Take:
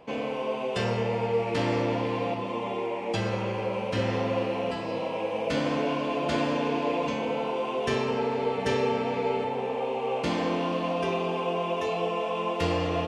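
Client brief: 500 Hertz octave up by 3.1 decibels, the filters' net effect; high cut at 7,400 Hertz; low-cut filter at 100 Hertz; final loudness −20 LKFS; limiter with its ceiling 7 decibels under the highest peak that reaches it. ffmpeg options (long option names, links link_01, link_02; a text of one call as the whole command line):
ffmpeg -i in.wav -af "highpass=100,lowpass=7400,equalizer=frequency=500:width_type=o:gain=3.5,volume=8dB,alimiter=limit=-11dB:level=0:latency=1" out.wav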